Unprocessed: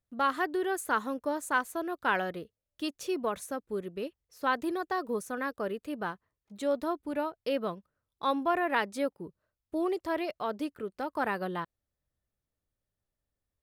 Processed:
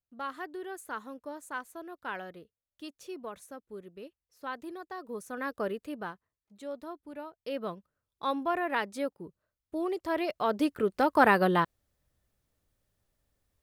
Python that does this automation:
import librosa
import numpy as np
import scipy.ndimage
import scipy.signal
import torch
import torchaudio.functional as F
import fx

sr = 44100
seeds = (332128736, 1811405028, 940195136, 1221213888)

y = fx.gain(x, sr, db=fx.line((4.97, -9.5), (5.61, 1.5), (6.57, -10.0), (7.26, -10.0), (7.69, -2.0), (9.88, -2.0), (10.87, 9.5)))